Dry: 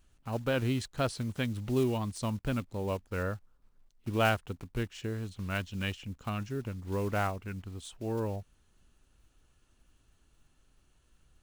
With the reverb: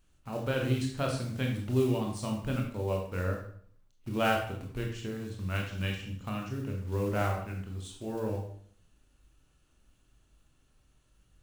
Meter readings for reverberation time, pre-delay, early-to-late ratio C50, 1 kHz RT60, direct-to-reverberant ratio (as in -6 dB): 0.55 s, 20 ms, 5.0 dB, 0.55 s, 0.0 dB